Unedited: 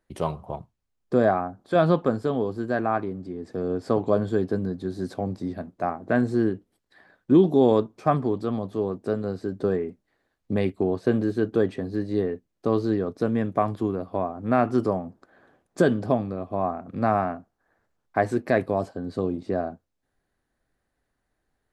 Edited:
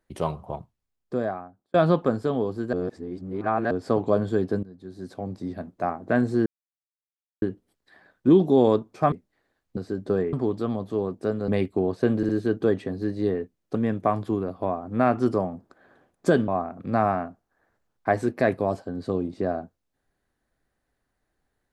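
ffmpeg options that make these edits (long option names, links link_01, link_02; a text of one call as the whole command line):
ffmpeg -i in.wav -filter_complex "[0:a]asplit=14[link_01][link_02][link_03][link_04][link_05][link_06][link_07][link_08][link_09][link_10][link_11][link_12][link_13][link_14];[link_01]atrim=end=1.74,asetpts=PTS-STARTPTS,afade=type=out:start_time=0.56:duration=1.18[link_15];[link_02]atrim=start=1.74:end=2.732,asetpts=PTS-STARTPTS,afade=type=in:duration=0.004:curve=hsin[link_16];[link_03]atrim=start=2.728:end=3.712,asetpts=PTS-STARTPTS,areverse[link_17];[link_04]atrim=start=3.708:end=4.63,asetpts=PTS-STARTPTS,afade=type=out:start_time=0.918:duration=0.004:curve=hsin:silence=0.1[link_18];[link_05]atrim=start=4.63:end=6.46,asetpts=PTS-STARTPTS,afade=type=in:duration=1.07:silence=0.1,afade=type=out:start_time=1.826:duration=0.004:curve=hsin,apad=pad_dur=0.96[link_19];[link_06]atrim=start=6.46:end=8.162,asetpts=PTS-STARTPTS,afade=type=in:duration=0.004:curve=hsin[link_20];[link_07]atrim=start=9.868:end=10.522[link_21];[link_08]atrim=start=9.308:end=9.872[link_22];[link_09]atrim=start=8.158:end=9.312[link_23];[link_10]atrim=start=10.518:end=11.272[link_24];[link_11]atrim=start=11.208:end=11.272[link_25];[link_12]atrim=start=11.208:end=12.672[link_26];[link_13]atrim=start=13.268:end=16.002[link_27];[link_14]atrim=start=16.568[link_28];[link_15][link_16]concat=n=2:v=0:a=1[link_29];[link_29][link_17]acrossfade=duration=0.004:curve1=hsin:curve2=hsin[link_30];[link_18][link_19][link_20]concat=n=3:v=0:a=1[link_31];[link_30][link_31]acrossfade=duration=0.004:curve1=hsin:curve2=hsin[link_32];[link_32][link_21]acrossfade=duration=0.004:curve1=hsin:curve2=hsin[link_33];[link_33][link_22]acrossfade=duration=0.004:curve1=hsin:curve2=hsin[link_34];[link_34][link_23]acrossfade=duration=0.004:curve1=hsin:curve2=hsin[link_35];[link_35][link_24]acrossfade=duration=0.004:curve1=hsin:curve2=hsin[link_36];[link_36][link_25]acrossfade=duration=0.004:curve1=hsin:curve2=hsin[link_37];[link_37][link_26]acrossfade=duration=0.004:curve1=hsin:curve2=hsin[link_38];[link_38][link_27]acrossfade=duration=0.004:curve1=hsin:curve2=hsin[link_39];[link_39][link_28]acrossfade=duration=0.004:curve1=hsin:curve2=hsin" out.wav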